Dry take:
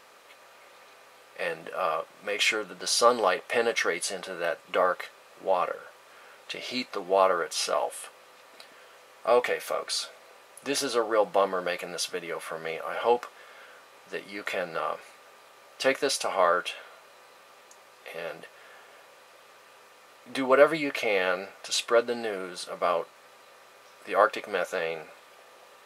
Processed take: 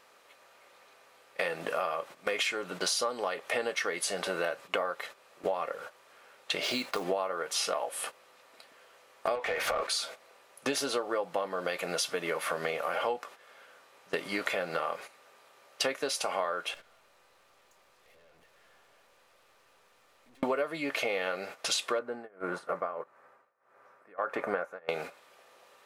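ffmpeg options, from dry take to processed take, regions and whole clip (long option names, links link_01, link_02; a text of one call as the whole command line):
ffmpeg -i in.wav -filter_complex "[0:a]asettb=1/sr,asplit=3[link_01][link_02][link_03];[link_01]atrim=end=6.634[link_04];[link_02]atrim=start=6.63:end=7.04,asetpts=PTS-STARTPTS,afade=type=in:duration=0.004:curve=qsin,afade=type=out:start_time=0.406:duration=0.004:curve=qsin,acompressor=threshold=-32dB:ratio=2.5:attack=3.2:release=140:knee=1:detection=peak,acrusher=bits=4:mode=log:mix=0:aa=0.000001[link_05];[link_03]atrim=start=7.036[link_06];[link_04][link_05]acrossfade=duration=0.004:curve1=hsin:curve2=qsin[link_07];[link_07][link_06]acrossfade=duration=0.004:curve1=qsin:curve2=hsin,asettb=1/sr,asplit=3[link_08][link_09][link_10];[link_08]atrim=end=9.354[link_11];[link_09]atrim=start=9.35:end=9.87,asetpts=PTS-STARTPTS,afade=type=in:duration=0.004:curve=qsin,afade=type=out:start_time=0.516:duration=0.004:curve=qsin,acompressor=threshold=-32dB:ratio=6:attack=3.2:release=140:knee=1:detection=peak,asplit=2[link_12][link_13];[link_13]highpass=frequency=720:poles=1,volume=22dB,asoftclip=type=tanh:threshold=-15dB[link_14];[link_12][link_14]amix=inputs=2:normalize=0,lowpass=frequency=2000:poles=1,volume=-6dB[link_15];[link_10]atrim=start=9.866[link_16];[link_11][link_15]acrossfade=duration=0.004:curve1=hsin:curve2=qsin[link_17];[link_17][link_16]acrossfade=duration=0.004:curve1=qsin:curve2=hsin,asettb=1/sr,asplit=3[link_18][link_19][link_20];[link_18]atrim=end=16.744[link_21];[link_19]atrim=start=16.74:end=20.43,asetpts=PTS-STARTPTS,afade=type=in:duration=0.004:curve=qsin,afade=type=out:start_time=3.686:duration=0.004:curve=qsin,acompressor=threshold=-43dB:ratio=6:attack=3.2:release=140:knee=1:detection=peak,aeval=exprs='(tanh(447*val(0)+0.75)-tanh(0.75))/447':channel_layout=same[link_22];[link_20]atrim=start=20.426[link_23];[link_21][link_22]acrossfade=duration=0.004:curve1=hsin:curve2=qsin[link_24];[link_24][link_23]acrossfade=duration=0.004:curve1=qsin:curve2=hsin,asettb=1/sr,asplit=3[link_25][link_26][link_27];[link_25]atrim=end=21.994[link_28];[link_26]atrim=start=21.99:end=24.89,asetpts=PTS-STARTPTS,afade=type=in:duration=0.004:curve=qsin,afade=type=out:start_time=2.896:duration=0.004:curve=qsin,highshelf=frequency=2300:width_type=q:width=1.5:gain=-14,tremolo=f=1.6:d=0.92[link_29];[link_27]atrim=start=24.886[link_30];[link_28][link_29]acrossfade=duration=0.004:curve1=hsin:curve2=qsin[link_31];[link_31][link_30]acrossfade=duration=0.004:curve1=qsin:curve2=hsin,agate=range=-15dB:threshold=-43dB:ratio=16:detection=peak,acompressor=threshold=-37dB:ratio=12,volume=9dB" out.wav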